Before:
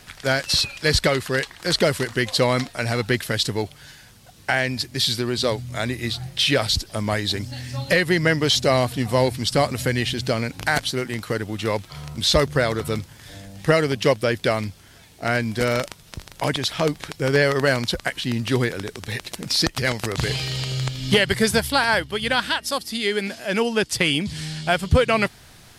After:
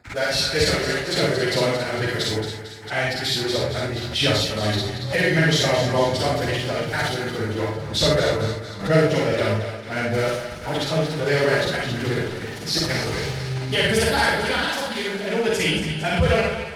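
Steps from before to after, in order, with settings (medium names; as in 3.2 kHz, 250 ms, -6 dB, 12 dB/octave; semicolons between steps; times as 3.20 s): local Wiener filter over 15 samples; gate -41 dBFS, range -44 dB; high-pass 48 Hz 24 dB/octave; band-stop 1.1 kHz, Q 9; dynamic bell 220 Hz, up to -5 dB, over -35 dBFS, Q 1.8; transient shaper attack 0 dB, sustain +6 dB; two-band feedback delay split 850 Hz, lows 208 ms, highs 347 ms, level -9 dB; plain phase-vocoder stretch 0.65×; reverberation, pre-delay 38 ms, DRR -2.5 dB; swell ahead of each attack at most 140 dB/s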